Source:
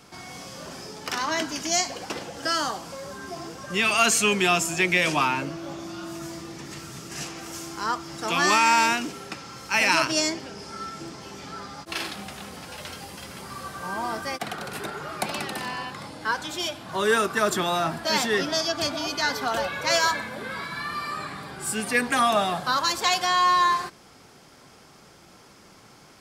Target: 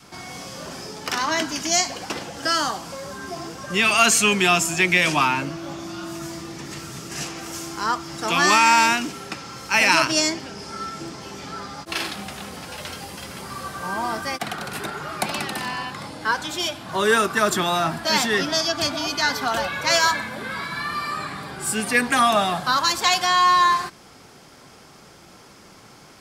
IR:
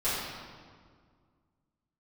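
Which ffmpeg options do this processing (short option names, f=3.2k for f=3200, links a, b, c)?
-af "adynamicequalizer=threshold=0.00708:dfrequency=480:dqfactor=1.8:tfrequency=480:tqfactor=1.8:attack=5:release=100:ratio=0.375:range=2.5:mode=cutabove:tftype=bell,volume=4dB"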